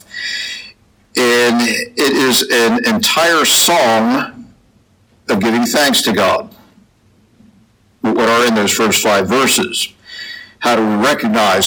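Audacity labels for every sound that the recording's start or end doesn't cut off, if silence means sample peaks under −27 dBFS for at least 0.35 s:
1.150000	4.410000	sound
5.290000	6.460000	sound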